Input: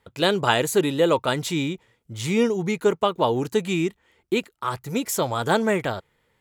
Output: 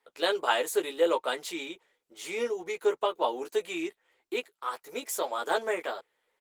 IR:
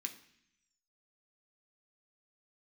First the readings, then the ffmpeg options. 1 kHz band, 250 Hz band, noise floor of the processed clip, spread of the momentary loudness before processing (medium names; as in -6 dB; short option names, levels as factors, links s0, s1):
-6.0 dB, -14.5 dB, -81 dBFS, 10 LU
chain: -filter_complex "[0:a]highpass=f=370:w=0.5412,highpass=f=370:w=1.3066,asplit=2[s0][s1];[s1]adelay=12,volume=0.708[s2];[s0][s2]amix=inputs=2:normalize=0,volume=0.422" -ar 48000 -c:a libopus -b:a 20k